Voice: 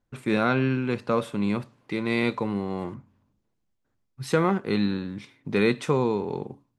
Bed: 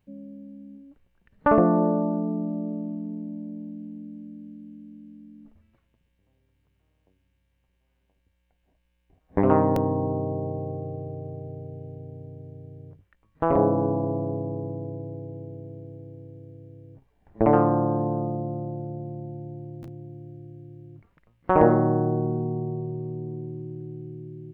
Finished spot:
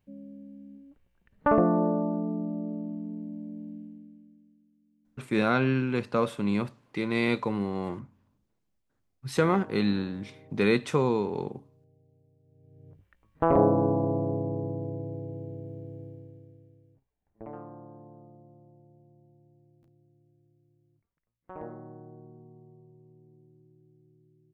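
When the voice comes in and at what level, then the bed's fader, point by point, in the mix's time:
5.05 s, −1.5 dB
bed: 0:03.76 −3.5 dB
0:04.72 −24 dB
0:12.41 −24 dB
0:13.06 −0.5 dB
0:16.04 −0.5 dB
0:17.49 −24 dB

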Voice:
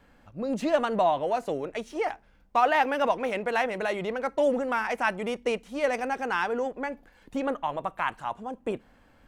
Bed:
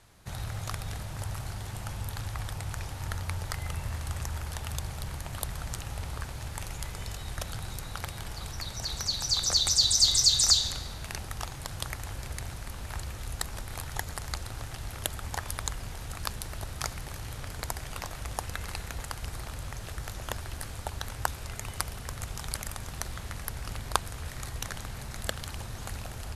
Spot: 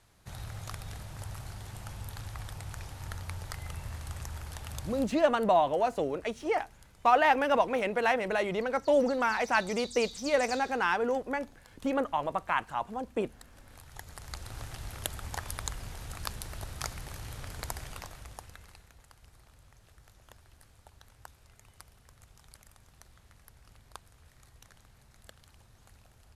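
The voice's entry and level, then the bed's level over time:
4.50 s, −0.5 dB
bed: 0:04.99 −5.5 dB
0:05.20 −20.5 dB
0:13.43 −20.5 dB
0:14.58 −3 dB
0:17.82 −3 dB
0:18.93 −20.5 dB

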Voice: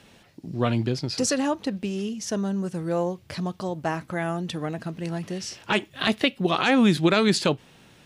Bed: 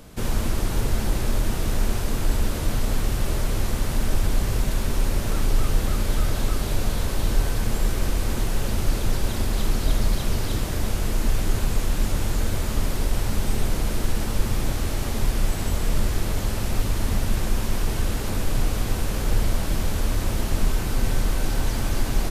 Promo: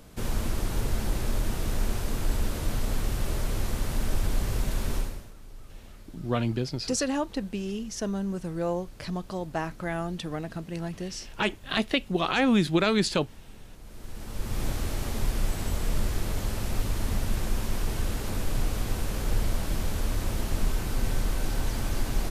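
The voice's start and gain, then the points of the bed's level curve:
5.70 s, −3.5 dB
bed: 0:04.97 −5 dB
0:05.34 −25.5 dB
0:13.72 −25.5 dB
0:14.63 −5 dB

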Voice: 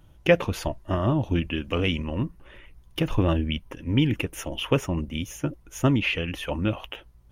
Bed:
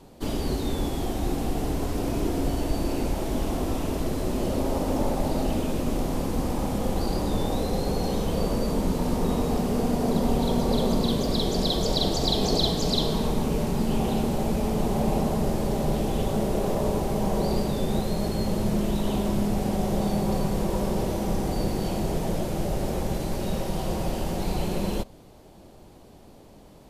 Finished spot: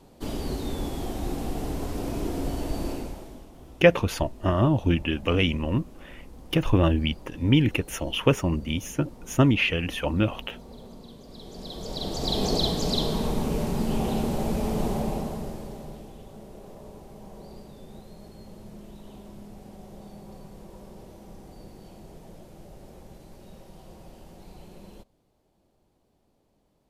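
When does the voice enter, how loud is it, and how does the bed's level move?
3.55 s, +2.0 dB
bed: 0:02.89 −3.5 dB
0:03.52 −22 dB
0:11.24 −22 dB
0:12.39 −1.5 dB
0:14.87 −1.5 dB
0:16.19 −19.5 dB

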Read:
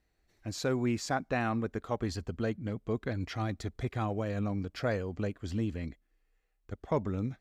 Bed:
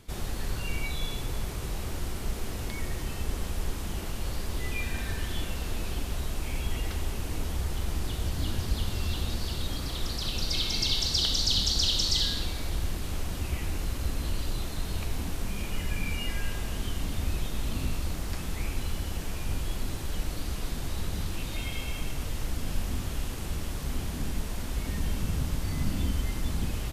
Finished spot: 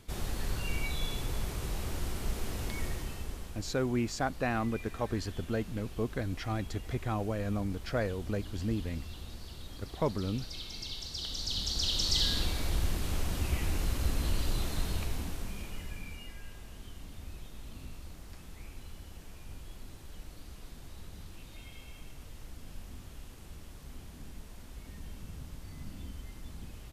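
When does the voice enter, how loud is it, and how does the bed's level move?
3.10 s, −0.5 dB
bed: 0:02.85 −2 dB
0:03.67 −13.5 dB
0:11.10 −13.5 dB
0:12.38 0 dB
0:14.80 0 dB
0:16.36 −15 dB

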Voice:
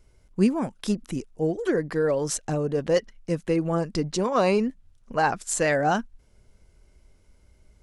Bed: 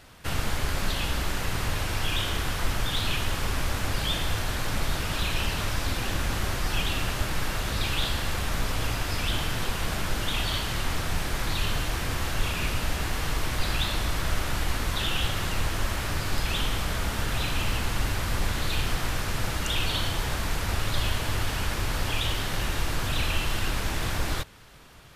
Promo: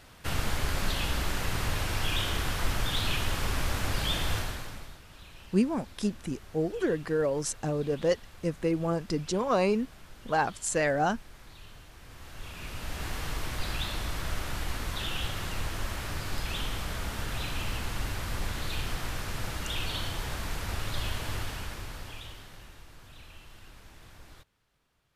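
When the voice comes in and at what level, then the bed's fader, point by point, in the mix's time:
5.15 s, −4.0 dB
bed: 0:04.37 −2 dB
0:05.01 −22.5 dB
0:11.96 −22.5 dB
0:13.07 −6 dB
0:21.36 −6 dB
0:22.85 −23.5 dB

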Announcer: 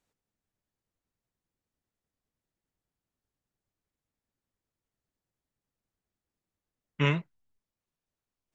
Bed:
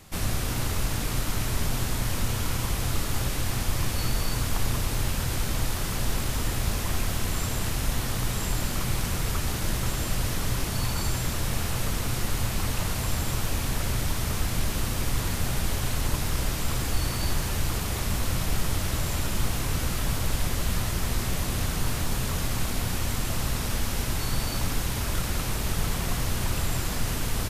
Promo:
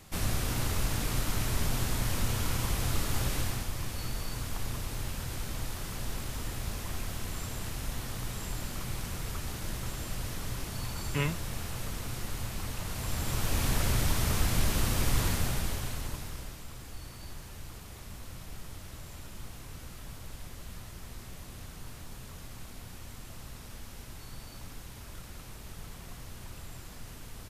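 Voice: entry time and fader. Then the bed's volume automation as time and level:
4.15 s, −5.0 dB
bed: 0:03.40 −3 dB
0:03.71 −9 dB
0:12.83 −9 dB
0:13.65 −0.5 dB
0:15.26 −0.5 dB
0:16.68 −17.5 dB

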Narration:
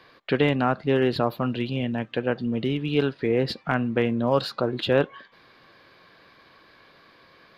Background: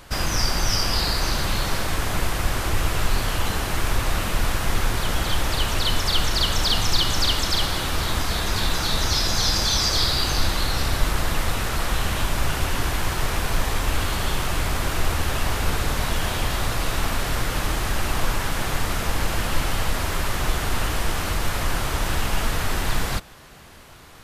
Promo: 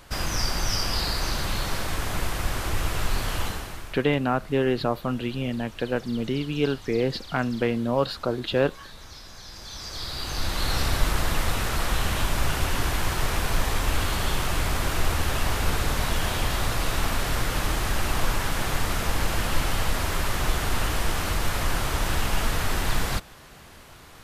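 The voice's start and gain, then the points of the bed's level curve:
3.65 s, −1.5 dB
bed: 0:03.43 −4 dB
0:04.08 −22.5 dB
0:09.45 −22.5 dB
0:10.72 −1.5 dB

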